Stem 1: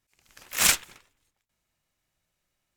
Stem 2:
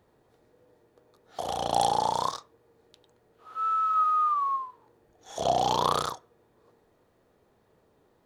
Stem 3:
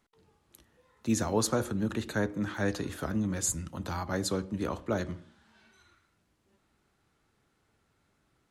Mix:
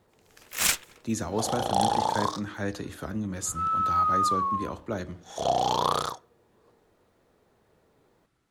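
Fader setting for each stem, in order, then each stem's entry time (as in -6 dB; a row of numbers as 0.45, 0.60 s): -3.5, 0.0, -1.5 dB; 0.00, 0.00, 0.00 s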